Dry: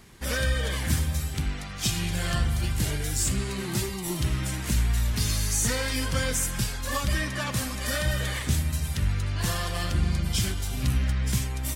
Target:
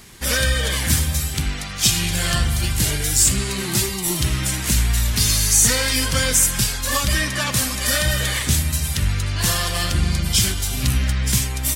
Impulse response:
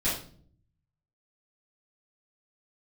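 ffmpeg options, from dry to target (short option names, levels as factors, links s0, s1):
-af "highshelf=f=2300:g=8,volume=1.78"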